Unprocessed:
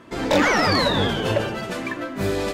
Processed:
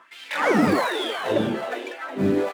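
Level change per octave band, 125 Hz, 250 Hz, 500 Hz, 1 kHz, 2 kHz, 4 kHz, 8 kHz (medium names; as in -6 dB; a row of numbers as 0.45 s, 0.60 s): -5.0 dB, +1.0 dB, -1.5 dB, -2.5 dB, -3.5 dB, -7.0 dB, -7.0 dB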